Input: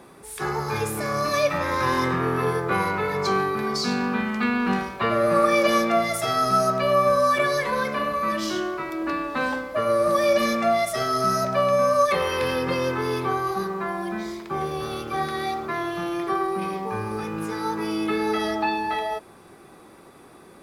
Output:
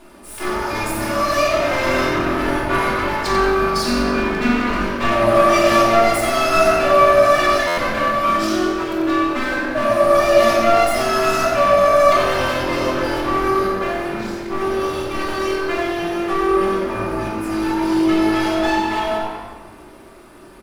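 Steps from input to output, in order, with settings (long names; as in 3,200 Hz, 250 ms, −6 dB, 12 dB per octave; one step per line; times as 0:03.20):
lower of the sound and its delayed copy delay 3.3 ms
reverb reduction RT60 0.59 s
echo with shifted repeats 91 ms, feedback 54%, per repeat +47 Hz, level −8 dB
rectangular room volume 1,300 cubic metres, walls mixed, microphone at 3.1 metres
buffer that repeats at 0:07.67, samples 512, times 8
level +1 dB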